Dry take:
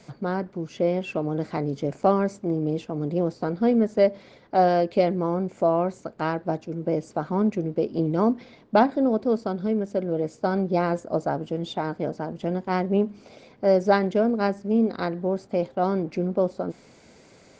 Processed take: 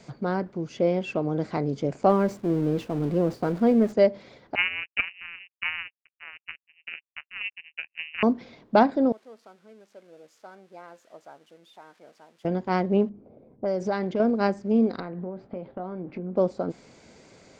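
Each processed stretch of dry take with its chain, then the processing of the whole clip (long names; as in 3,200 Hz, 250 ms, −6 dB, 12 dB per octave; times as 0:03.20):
0:02.09–0:03.93: converter with a step at zero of −35.5 dBFS + downward expander −33 dBFS + high-shelf EQ 3,500 Hz −8 dB
0:04.55–0:08.23: running median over 25 samples + power curve on the samples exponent 3 + voice inversion scrambler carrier 2,900 Hz
0:09.12–0:12.45: spike at every zero crossing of −24.5 dBFS + low-pass filter 1,400 Hz + first difference
0:13.09–0:14.20: low-pass that shuts in the quiet parts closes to 400 Hz, open at −16.5 dBFS + downward compressor 4 to 1, threshold −23 dBFS
0:15.00–0:16.36: downward compressor 12 to 1, threshold −29 dBFS + high-frequency loss of the air 400 metres + double-tracking delay 22 ms −11.5 dB
whole clip: no processing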